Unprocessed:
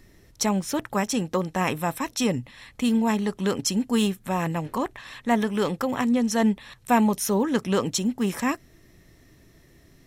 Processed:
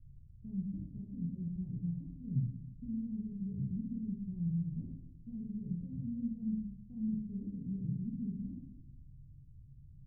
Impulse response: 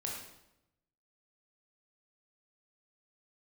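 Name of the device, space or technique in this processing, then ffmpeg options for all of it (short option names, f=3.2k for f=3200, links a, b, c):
club heard from the street: -filter_complex "[0:a]alimiter=limit=-16.5dB:level=0:latency=1,lowpass=f=140:w=0.5412,lowpass=f=140:w=1.3066[a];[1:a]atrim=start_sample=2205[b];[a][b]afir=irnorm=-1:irlink=0,volume=1.5dB"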